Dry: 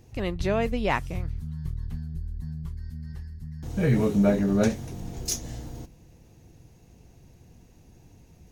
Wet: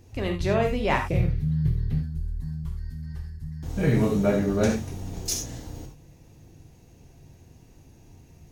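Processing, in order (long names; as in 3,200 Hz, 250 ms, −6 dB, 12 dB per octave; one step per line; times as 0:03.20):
0:01.10–0:02.01: octave-band graphic EQ 125/250/500/1,000/2,000/4,000/8,000 Hz +10/+4/+11/−6/+6/+4/−6 dB
reverb whose tail is shaped and stops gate 110 ms flat, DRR 2.5 dB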